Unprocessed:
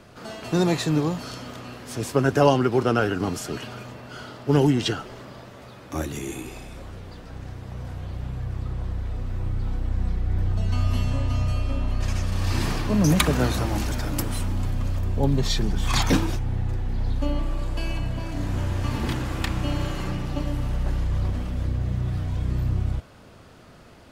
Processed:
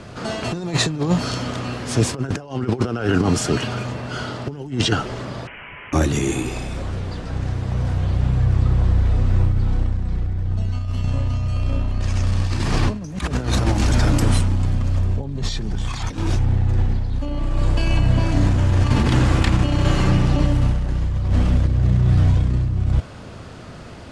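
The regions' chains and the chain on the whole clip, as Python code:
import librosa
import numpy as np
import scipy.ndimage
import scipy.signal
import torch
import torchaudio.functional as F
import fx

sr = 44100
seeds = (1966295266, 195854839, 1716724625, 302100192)

y = fx.chain(x, sr, fx.highpass(hz=1400.0, slope=12),
    fx.freq_invert(carrier_hz=3500),
    fx.env_flatten(amount_pct=70), at=(5.47, 5.93))
y = scipy.signal.sosfilt(scipy.signal.butter(4, 9500.0, 'lowpass', fs=sr, output='sos'), y)
y = fx.over_compress(y, sr, threshold_db=-26.0, ratio=-0.5)
y = fx.peak_eq(y, sr, hz=100.0, db=4.0, octaves=2.0)
y = y * 10.0 ** (6.5 / 20.0)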